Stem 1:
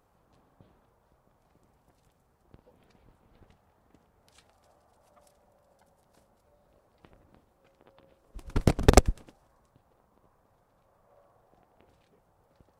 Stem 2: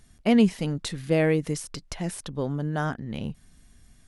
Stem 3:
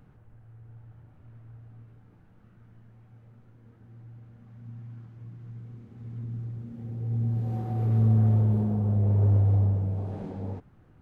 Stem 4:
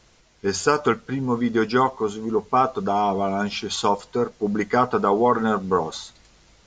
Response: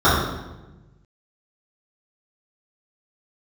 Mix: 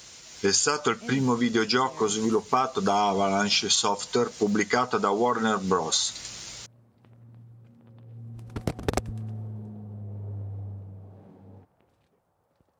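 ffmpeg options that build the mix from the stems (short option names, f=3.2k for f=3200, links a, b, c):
-filter_complex "[0:a]volume=-4dB[a];[1:a]adelay=750,volume=-16dB[b];[2:a]adelay=1050,volume=-14dB[c];[3:a]dynaudnorm=f=190:g=3:m=6dB,crystalizer=i=5.5:c=0,volume=1dB[d];[a][b][c][d]amix=inputs=4:normalize=0,highpass=72,acompressor=threshold=-21dB:ratio=6"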